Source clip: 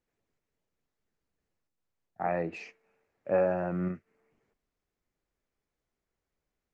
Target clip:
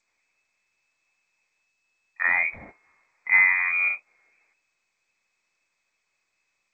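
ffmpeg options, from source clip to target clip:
-filter_complex "[0:a]lowpass=f=2.2k:t=q:w=0.5098,lowpass=f=2.2k:t=q:w=0.6013,lowpass=f=2.2k:t=q:w=0.9,lowpass=f=2.2k:t=q:w=2.563,afreqshift=-2600,asplit=3[a][b][c];[a]afade=t=out:st=2.3:d=0.02[d];[b]equalizer=f=1.1k:t=o:w=0.49:g=6.5,afade=t=in:st=2.3:d=0.02,afade=t=out:st=3.29:d=0.02[e];[c]afade=t=in:st=3.29:d=0.02[f];[d][e][f]amix=inputs=3:normalize=0,volume=7.5dB" -ar 16000 -c:a g722

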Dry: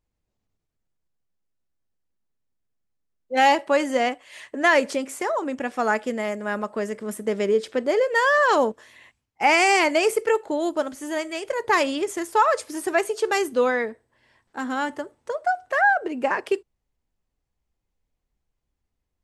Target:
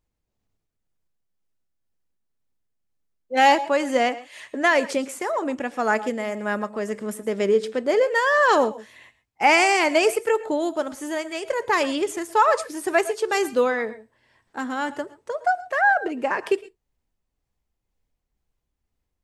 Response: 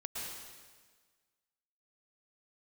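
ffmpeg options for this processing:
-filter_complex "[0:a]tremolo=f=2:d=0.3,asplit=2[a][b];[1:a]atrim=start_sample=2205,atrim=end_sample=6174[c];[b][c]afir=irnorm=-1:irlink=0,volume=-9dB[d];[a][d]amix=inputs=2:normalize=0"

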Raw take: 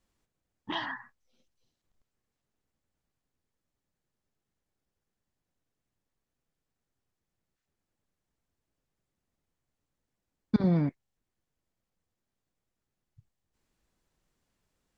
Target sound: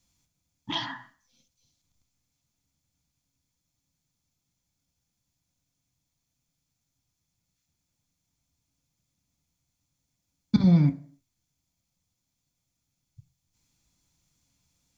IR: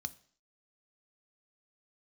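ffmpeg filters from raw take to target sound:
-filter_complex "[0:a]asplit=2[a][b];[1:a]atrim=start_sample=2205,highshelf=f=3.9k:g=9.5[c];[b][c]afir=irnorm=-1:irlink=0,volume=7dB[d];[a][d]amix=inputs=2:normalize=0,volume=-2.5dB"

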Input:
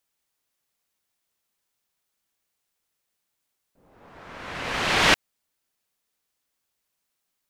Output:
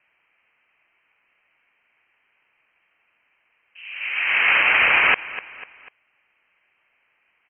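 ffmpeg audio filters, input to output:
-af "equalizer=f=820:w=0.56:g=15,areverse,acompressor=threshold=-22dB:ratio=12,areverse,aecho=1:1:247|494|741:0.106|0.0477|0.0214,lowpass=f=2.7k:t=q:w=0.5098,lowpass=f=2.7k:t=q:w=0.6013,lowpass=f=2.7k:t=q:w=0.9,lowpass=f=2.7k:t=q:w=2.563,afreqshift=-3200,alimiter=level_in=16.5dB:limit=-1dB:release=50:level=0:latency=1,volume=-5.5dB"

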